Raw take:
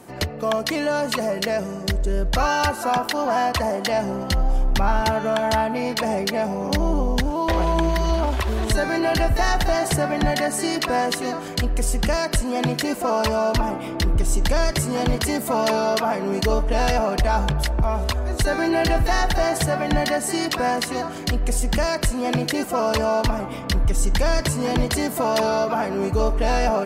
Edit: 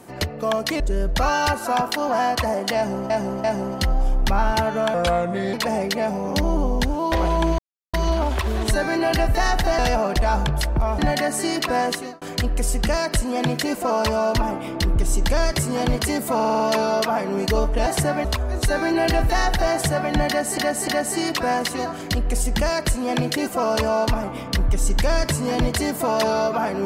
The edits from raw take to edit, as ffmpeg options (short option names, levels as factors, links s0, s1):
-filter_complex "[0:a]asplit=19[s0][s1][s2][s3][s4][s5][s6][s7][s8][s9][s10][s11][s12][s13][s14][s15][s16][s17][s18];[s0]atrim=end=0.802[s19];[s1]atrim=start=1.968:end=4.272[s20];[s2]atrim=start=3.928:end=4.272[s21];[s3]atrim=start=3.928:end=5.434[s22];[s4]atrim=start=5.43:end=5.9,asetpts=PTS-STARTPTS,asetrate=34839,aresample=44100[s23];[s5]atrim=start=5.896:end=7.95,asetpts=PTS-STARTPTS,afade=t=out:st=2.05:d=0.004:c=hsin,apad=pad_dur=0.35[s24];[s6]atrim=start=7.95:end=9.802,asetpts=PTS-STARTPTS,afade=t=in:d=0.004:c=hsin[s25];[s7]atrim=start=16.808:end=18.012[s26];[s8]atrim=start=10.178:end=11.41,asetpts=PTS-STARTPTS,afade=t=out:st=0.902:d=0.33[s27];[s9]atrim=start=11.41:end=15.592,asetpts=PTS-STARTPTS,afade=t=in:d=0.004:c=hsin[s28];[s10]atrim=start=15.538:end=15.592[s29];[s11]atrim=start=15.538:end=15.592[s30];[s12]atrim=start=15.538:end=15.592[s31];[s13]atrim=start=15.538:end=15.592[s32];[s14]atrim=start=15.538:end=16.812[s33];[s15]atrim=start=9.798:end=10.182[s34];[s16]atrim=start=18.008:end=20.342[s35];[s17]atrim=start=20.038:end=20.342[s36];[s18]atrim=start=20.038[s37];[s19][s20]acrossfade=d=0.004:c1=hsin:c2=hsin[s38];[s38][s21]acrossfade=d=0.004:c1=hsin:c2=hsin[s39];[s39][s22]acrossfade=d=0.004:c1=hsin:c2=hsin[s40];[s40][s23]acrossfade=d=0.004:c1=hsin:c2=hsin[s41];[s24][s25]concat=n=2:v=0:a=1[s42];[s41][s42]acrossfade=d=0.004:c1=hsin:c2=hsin[s43];[s43][s26]acrossfade=d=0.004:c1=hsin:c2=hsin[s44];[s27][s28]concat=n=2:v=0:a=1[s45];[s44][s45]acrossfade=d=0.004:c1=hsin:c2=hsin[s46];[s46][s29]acrossfade=d=0.004:c1=hsin:c2=hsin[s47];[s47][s30]acrossfade=d=0.004:c1=hsin:c2=hsin[s48];[s48][s31]acrossfade=d=0.004:c1=hsin:c2=hsin[s49];[s49][s32]acrossfade=d=0.004:c1=hsin:c2=hsin[s50];[s50][s33]acrossfade=d=0.004:c1=hsin:c2=hsin[s51];[s51][s34]acrossfade=d=0.004:c1=hsin:c2=hsin[s52];[s52][s35]acrossfade=d=0.004:c1=hsin:c2=hsin[s53];[s53][s36]acrossfade=d=0.004:c1=hsin:c2=hsin[s54];[s54][s37]acrossfade=d=0.004:c1=hsin:c2=hsin"